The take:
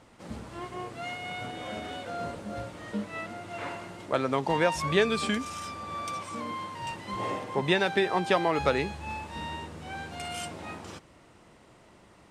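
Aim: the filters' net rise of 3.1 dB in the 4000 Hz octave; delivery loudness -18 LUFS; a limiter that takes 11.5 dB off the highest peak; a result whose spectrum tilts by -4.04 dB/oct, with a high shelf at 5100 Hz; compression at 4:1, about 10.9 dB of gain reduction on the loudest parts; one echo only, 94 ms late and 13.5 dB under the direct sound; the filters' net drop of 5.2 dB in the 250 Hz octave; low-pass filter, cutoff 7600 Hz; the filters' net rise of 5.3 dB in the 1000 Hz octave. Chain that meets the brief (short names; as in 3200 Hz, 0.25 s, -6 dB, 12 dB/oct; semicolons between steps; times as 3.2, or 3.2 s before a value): LPF 7600 Hz; bell 250 Hz -8.5 dB; bell 1000 Hz +7 dB; bell 4000 Hz +6 dB; high shelf 5100 Hz -6 dB; compressor 4:1, threshold -31 dBFS; limiter -28 dBFS; echo 94 ms -13.5 dB; gain +19 dB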